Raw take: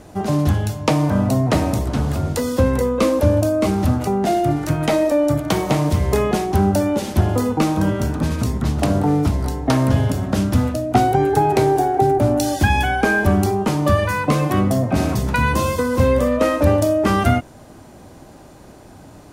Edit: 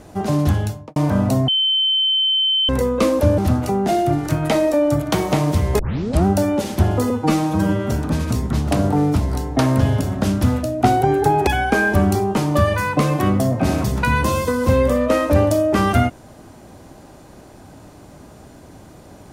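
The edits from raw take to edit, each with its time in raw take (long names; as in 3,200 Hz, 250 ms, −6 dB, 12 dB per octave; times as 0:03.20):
0:00.61–0:00.96: fade out and dull
0:01.48–0:02.69: beep over 3,080 Hz −14.5 dBFS
0:03.38–0:03.76: remove
0:06.17: tape start 0.47 s
0:07.48–0:08.02: time-stretch 1.5×
0:11.58–0:12.78: remove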